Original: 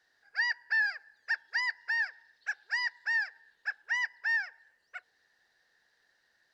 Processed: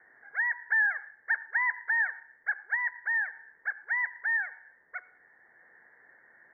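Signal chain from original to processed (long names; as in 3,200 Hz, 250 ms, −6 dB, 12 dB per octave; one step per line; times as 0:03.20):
transient designer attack −1 dB, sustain +3 dB
Chebyshev low-pass filter 2,200 Hz, order 10
convolution reverb RT60 0.55 s, pre-delay 60 ms, DRR 17 dB
0:00.66–0:02.75: dynamic equaliser 1,100 Hz, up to +6 dB, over −45 dBFS, Q 0.94
multiband upward and downward compressor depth 40%
level +2 dB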